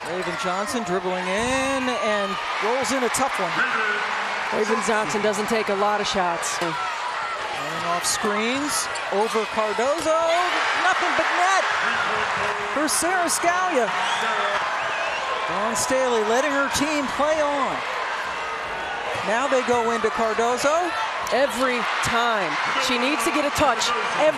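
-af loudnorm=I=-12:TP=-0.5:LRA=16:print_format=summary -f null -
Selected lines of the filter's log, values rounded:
Input Integrated:    -21.9 LUFS
Input True Peak:      -7.4 dBTP
Input LRA:             2.8 LU
Input Threshold:     -31.9 LUFS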